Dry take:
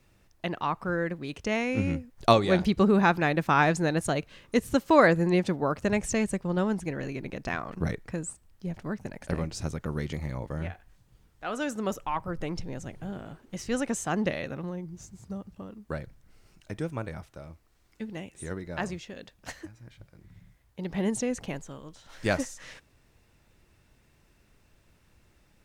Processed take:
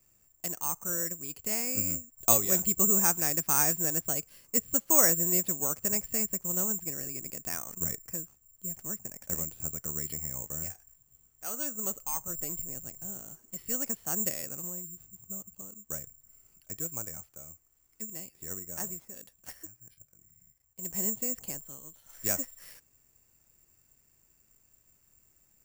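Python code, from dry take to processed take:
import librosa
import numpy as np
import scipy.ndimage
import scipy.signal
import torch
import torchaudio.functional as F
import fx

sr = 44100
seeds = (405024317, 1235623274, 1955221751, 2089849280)

y = fx.median_filter(x, sr, points=15, at=(18.53, 19.15))
y = (np.kron(scipy.signal.resample_poly(y, 1, 6), np.eye(6)[0]) * 6)[:len(y)]
y = fx.level_steps(y, sr, step_db=10, at=(19.74, 20.83))
y = y * librosa.db_to_amplitude(-11.0)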